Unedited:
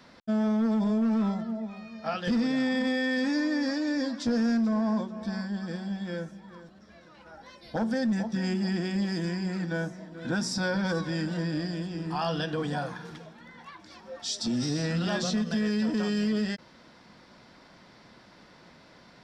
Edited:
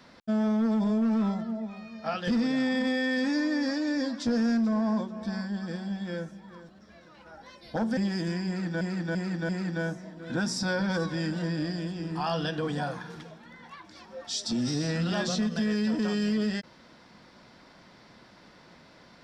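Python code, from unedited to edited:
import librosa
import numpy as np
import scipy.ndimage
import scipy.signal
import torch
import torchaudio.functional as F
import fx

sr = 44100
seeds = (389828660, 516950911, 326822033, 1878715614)

y = fx.edit(x, sr, fx.cut(start_s=7.97, length_s=0.97),
    fx.repeat(start_s=9.44, length_s=0.34, count=4), tone=tone)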